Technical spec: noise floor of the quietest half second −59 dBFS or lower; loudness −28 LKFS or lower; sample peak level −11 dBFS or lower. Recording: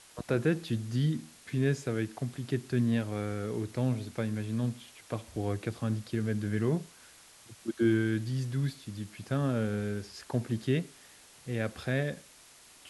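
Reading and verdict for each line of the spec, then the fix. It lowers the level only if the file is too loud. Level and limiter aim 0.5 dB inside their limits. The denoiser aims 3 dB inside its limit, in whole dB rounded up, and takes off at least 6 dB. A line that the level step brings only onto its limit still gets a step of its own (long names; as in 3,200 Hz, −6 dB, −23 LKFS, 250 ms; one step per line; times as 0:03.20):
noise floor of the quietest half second −56 dBFS: out of spec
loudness −32.5 LKFS: in spec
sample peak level −15.5 dBFS: in spec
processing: broadband denoise 6 dB, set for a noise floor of −56 dBFS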